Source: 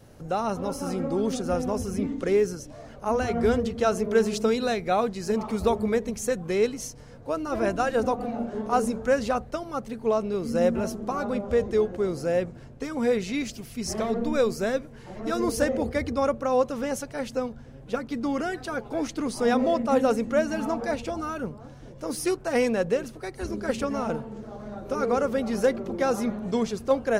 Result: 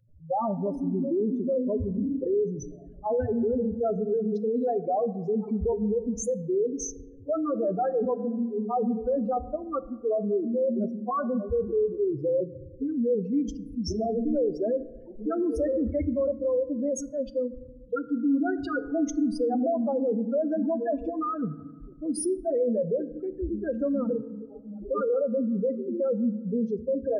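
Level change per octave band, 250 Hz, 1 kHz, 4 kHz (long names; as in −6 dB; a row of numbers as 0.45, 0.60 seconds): +0.5, −4.5, −13.5 decibels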